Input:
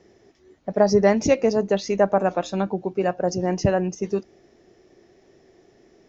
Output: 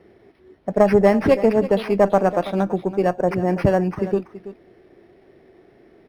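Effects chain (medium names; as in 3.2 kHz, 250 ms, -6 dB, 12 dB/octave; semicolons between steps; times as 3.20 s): single-diode clipper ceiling -11.5 dBFS; delay 330 ms -14.5 dB; decimation joined by straight lines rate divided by 6×; trim +4 dB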